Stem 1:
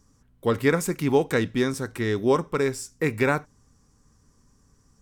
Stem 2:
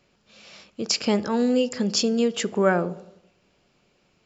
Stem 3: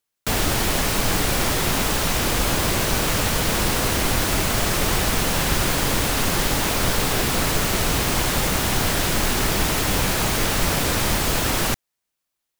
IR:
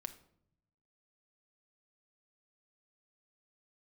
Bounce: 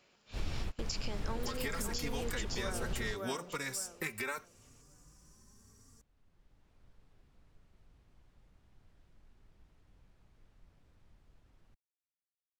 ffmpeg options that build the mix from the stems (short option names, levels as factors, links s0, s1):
-filter_complex "[0:a]aemphasis=mode=production:type=cd,acrossover=split=870|2000[s0][s1][s2];[s0]acompressor=threshold=0.0112:ratio=4[s3];[s1]acompressor=threshold=0.02:ratio=4[s4];[s2]acompressor=threshold=0.0178:ratio=4[s5];[s3][s4][s5]amix=inputs=3:normalize=0,asplit=2[s6][s7];[s7]adelay=3.6,afreqshift=0.74[s8];[s6][s8]amix=inputs=2:normalize=1,adelay=1000,volume=1.12[s9];[1:a]acompressor=threshold=0.0282:ratio=6,lowshelf=f=320:g=-11,volume=0.891,asplit=3[s10][s11][s12];[s11]volume=0.631[s13];[2:a]aemphasis=mode=reproduction:type=bsi,volume=0.211,afade=t=in:st=6.04:d=0.75:silence=0.334965[s14];[s12]apad=whole_len=555401[s15];[s14][s15]sidechaingate=range=0.0126:threshold=0.002:ratio=16:detection=peak[s16];[s13]aecho=0:1:563|1126|1689|2252:1|0.27|0.0729|0.0197[s17];[s9][s10][s16][s17]amix=inputs=4:normalize=0,alimiter=level_in=1.26:limit=0.0631:level=0:latency=1:release=202,volume=0.794"